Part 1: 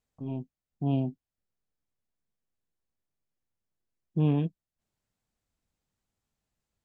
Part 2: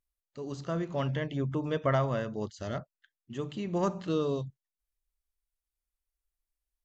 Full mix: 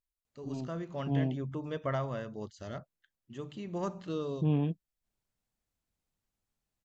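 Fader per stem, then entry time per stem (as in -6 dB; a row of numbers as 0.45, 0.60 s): -3.5, -6.0 dB; 0.25, 0.00 s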